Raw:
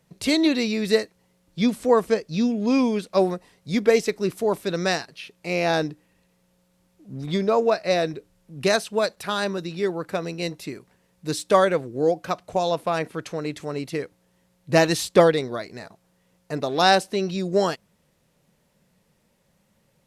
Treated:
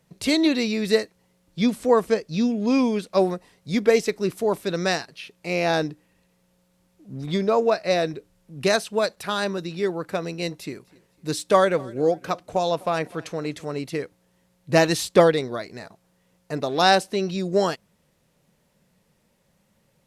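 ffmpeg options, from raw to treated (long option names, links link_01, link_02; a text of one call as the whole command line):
ffmpeg -i in.wav -filter_complex "[0:a]asettb=1/sr,asplit=3[link_01][link_02][link_03];[link_01]atrim=end=10.454[link_04];[link_02]atrim=start=10.45:end=13.71,asetpts=PTS-STARTPTS,afade=type=in:duration=0.004:curve=qsin,afade=type=out:start_time=3.256:duration=0.004:curve=qsin,aecho=1:1:252|504:0.0668|0.0247,atrim=end_sample=143766[link_05];[link_03]atrim=start=13.706[link_06];[link_04][link_05]acrossfade=duration=0.004:curve1=hsin:curve2=qsin[link_07];[link_07][link_06]acrossfade=duration=0.004:curve1=qsin:curve2=hsin" out.wav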